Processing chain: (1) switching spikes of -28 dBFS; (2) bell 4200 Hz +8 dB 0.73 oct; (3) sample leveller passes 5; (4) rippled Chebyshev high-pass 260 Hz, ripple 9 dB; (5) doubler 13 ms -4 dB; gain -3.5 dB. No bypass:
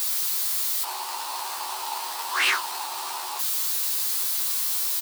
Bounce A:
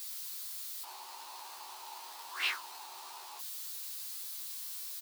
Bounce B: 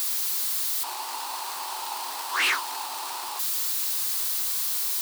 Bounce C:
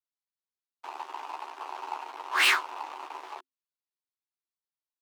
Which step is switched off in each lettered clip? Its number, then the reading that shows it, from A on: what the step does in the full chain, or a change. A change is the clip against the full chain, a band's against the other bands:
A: 3, crest factor change +9.0 dB; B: 5, 250 Hz band +2.0 dB; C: 1, crest factor change +7.0 dB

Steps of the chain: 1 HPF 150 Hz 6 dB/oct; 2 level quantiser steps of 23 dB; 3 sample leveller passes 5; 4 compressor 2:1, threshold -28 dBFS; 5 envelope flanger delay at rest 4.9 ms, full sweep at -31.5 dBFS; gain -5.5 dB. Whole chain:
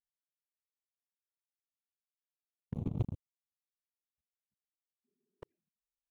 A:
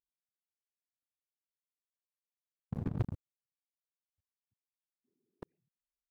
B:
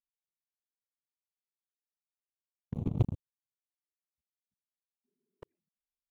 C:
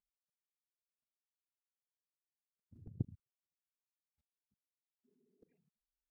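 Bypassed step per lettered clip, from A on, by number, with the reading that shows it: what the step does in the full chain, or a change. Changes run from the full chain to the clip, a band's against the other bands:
5, 1 kHz band +3.5 dB; 4, mean gain reduction 3.5 dB; 3, crest factor change +10.5 dB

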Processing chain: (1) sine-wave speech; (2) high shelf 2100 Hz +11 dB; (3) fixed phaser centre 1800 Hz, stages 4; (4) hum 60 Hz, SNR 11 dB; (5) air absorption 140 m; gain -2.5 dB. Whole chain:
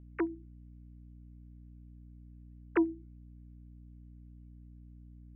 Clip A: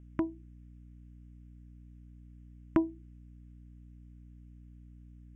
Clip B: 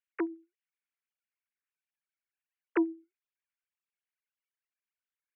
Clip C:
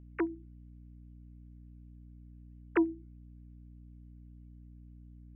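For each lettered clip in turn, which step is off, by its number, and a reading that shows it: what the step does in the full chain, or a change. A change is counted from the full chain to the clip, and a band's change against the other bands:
1, 2 kHz band -7.5 dB; 4, momentary loudness spread change -1 LU; 5, momentary loudness spread change -3 LU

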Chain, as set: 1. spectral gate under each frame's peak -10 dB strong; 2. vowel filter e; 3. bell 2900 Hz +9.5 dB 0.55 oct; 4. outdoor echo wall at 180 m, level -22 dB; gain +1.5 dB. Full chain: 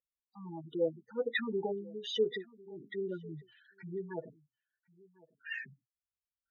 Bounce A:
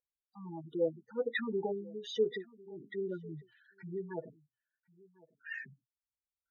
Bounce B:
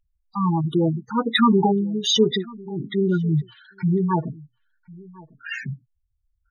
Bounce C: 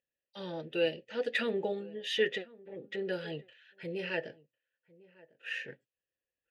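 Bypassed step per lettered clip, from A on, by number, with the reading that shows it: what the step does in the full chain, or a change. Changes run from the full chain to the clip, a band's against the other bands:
3, 4 kHz band -5.0 dB; 2, 2 kHz band -12.5 dB; 1, 4 kHz band +3.0 dB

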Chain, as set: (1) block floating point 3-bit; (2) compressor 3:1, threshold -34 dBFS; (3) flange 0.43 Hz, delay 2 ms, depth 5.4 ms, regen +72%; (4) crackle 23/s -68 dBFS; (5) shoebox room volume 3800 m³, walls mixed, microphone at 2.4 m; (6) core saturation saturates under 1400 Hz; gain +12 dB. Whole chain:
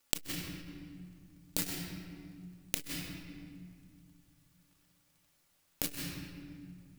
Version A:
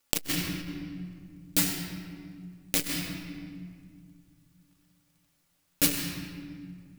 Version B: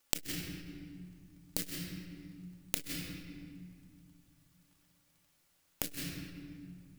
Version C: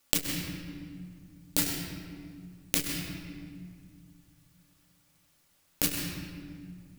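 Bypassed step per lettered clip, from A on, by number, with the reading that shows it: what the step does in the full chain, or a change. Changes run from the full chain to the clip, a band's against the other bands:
2, mean gain reduction 6.0 dB; 1, distortion -9 dB; 3, loudness change +7.5 LU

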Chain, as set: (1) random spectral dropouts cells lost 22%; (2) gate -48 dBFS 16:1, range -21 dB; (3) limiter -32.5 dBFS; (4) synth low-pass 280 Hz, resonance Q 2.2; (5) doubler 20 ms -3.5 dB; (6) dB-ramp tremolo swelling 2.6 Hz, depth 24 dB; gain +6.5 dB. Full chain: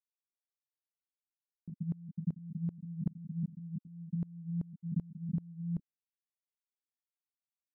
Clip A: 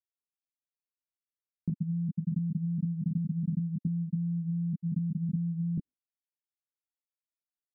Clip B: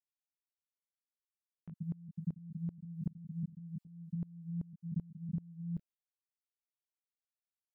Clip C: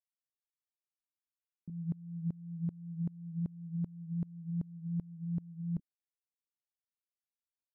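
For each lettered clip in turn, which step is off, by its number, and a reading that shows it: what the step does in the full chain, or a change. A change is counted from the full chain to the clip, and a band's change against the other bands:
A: 6, crest factor change -6.0 dB; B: 4, loudness change -3.0 LU; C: 1, crest factor change -4.0 dB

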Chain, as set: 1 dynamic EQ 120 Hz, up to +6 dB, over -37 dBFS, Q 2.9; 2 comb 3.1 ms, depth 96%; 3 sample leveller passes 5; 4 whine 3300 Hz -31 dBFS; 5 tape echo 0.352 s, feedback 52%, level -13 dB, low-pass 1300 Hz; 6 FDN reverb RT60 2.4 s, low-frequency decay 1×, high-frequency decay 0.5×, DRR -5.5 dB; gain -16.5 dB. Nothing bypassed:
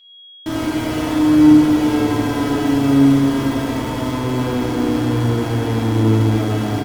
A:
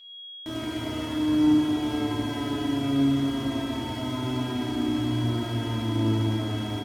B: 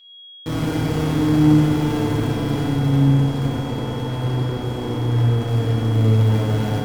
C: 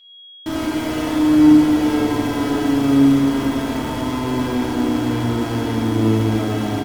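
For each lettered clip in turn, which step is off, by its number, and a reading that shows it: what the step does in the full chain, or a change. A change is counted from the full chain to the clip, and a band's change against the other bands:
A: 3, 4 kHz band +7.5 dB; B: 2, 125 Hz band +8.0 dB; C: 1, loudness change -1.5 LU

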